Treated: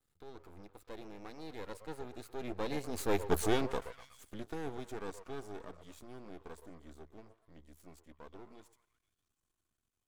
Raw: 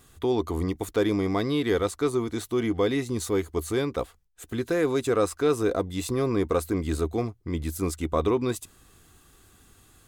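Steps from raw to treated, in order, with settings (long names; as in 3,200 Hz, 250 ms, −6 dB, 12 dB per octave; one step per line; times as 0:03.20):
source passing by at 0:03.36, 25 m/s, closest 4.8 metres
echo through a band-pass that steps 122 ms, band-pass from 600 Hz, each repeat 0.7 octaves, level −8.5 dB
half-wave rectification
level +3 dB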